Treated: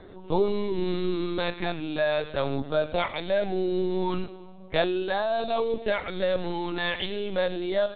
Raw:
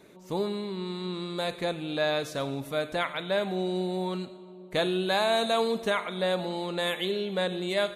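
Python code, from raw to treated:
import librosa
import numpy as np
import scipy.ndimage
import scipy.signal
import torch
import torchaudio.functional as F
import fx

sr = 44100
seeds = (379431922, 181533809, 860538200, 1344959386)

y = fx.rider(x, sr, range_db=10, speed_s=0.5)
y = fx.filter_lfo_notch(y, sr, shape='saw_down', hz=0.39, low_hz=210.0, high_hz=2600.0, q=2.2)
y = fx.lpc_vocoder(y, sr, seeds[0], excitation='pitch_kept', order=16)
y = fx.air_absorb(y, sr, metres=65.0)
y = y * librosa.db_to_amplitude(3.5)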